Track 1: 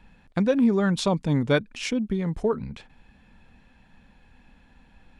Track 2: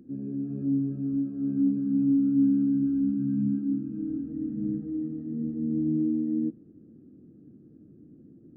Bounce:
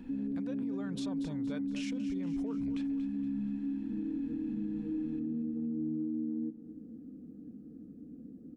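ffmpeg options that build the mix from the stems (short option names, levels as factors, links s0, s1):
-filter_complex "[0:a]acompressor=threshold=0.0398:ratio=6,alimiter=level_in=1.41:limit=0.0631:level=0:latency=1:release=60,volume=0.708,volume=0.596,asplit=2[s0][s1];[s1]volume=0.224[s2];[1:a]aecho=1:1:4.1:0.73,acompressor=threshold=0.0282:ratio=12,volume=1.06,asplit=2[s3][s4];[s4]volume=0.158[s5];[s2][s5]amix=inputs=2:normalize=0,aecho=0:1:234|468|702|936|1170|1404|1638:1|0.49|0.24|0.118|0.0576|0.0282|0.0138[s6];[s0][s3][s6]amix=inputs=3:normalize=0,alimiter=level_in=1.78:limit=0.0631:level=0:latency=1:release=38,volume=0.562"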